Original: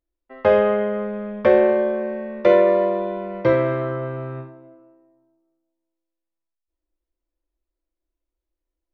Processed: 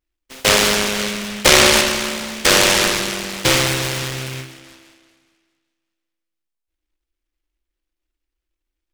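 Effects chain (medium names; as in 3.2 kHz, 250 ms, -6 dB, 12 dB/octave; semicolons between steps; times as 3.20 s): in parallel at +2 dB: peak limiter -10 dBFS, peak gain reduction 7 dB; 0.97–1.81 s: on the sum: dynamic bell 550 Hz, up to +3 dB, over -20 dBFS, Q 0.81; delay time shaken by noise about 2.3 kHz, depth 0.41 ms; trim -4.5 dB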